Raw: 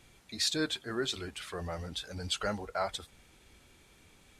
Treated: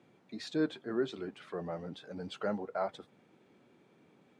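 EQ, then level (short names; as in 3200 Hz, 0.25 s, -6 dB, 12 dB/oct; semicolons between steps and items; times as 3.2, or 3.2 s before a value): HPF 130 Hz 24 dB/oct; band-pass 210 Hz, Q 0.51; low shelf 180 Hz -8 dB; +5.5 dB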